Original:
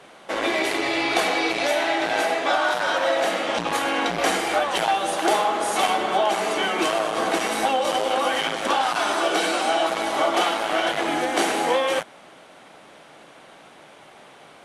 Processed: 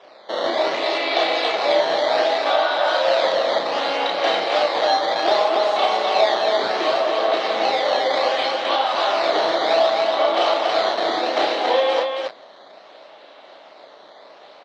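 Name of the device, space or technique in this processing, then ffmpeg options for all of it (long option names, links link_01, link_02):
circuit-bent sampling toy: -af "acrusher=samples=10:mix=1:aa=0.000001:lfo=1:lforange=16:lforate=0.66,highpass=400,equalizer=frequency=610:width_type=q:width=4:gain=7,equalizer=frequency=1500:width_type=q:width=4:gain=-4,equalizer=frequency=2400:width_type=q:width=4:gain=-3,equalizer=frequency=4000:width_type=q:width=4:gain=8,lowpass=frequency=4500:width=0.5412,lowpass=frequency=4500:width=1.3066,aecho=1:1:32.07|279.9:0.708|0.708,volume=-1dB"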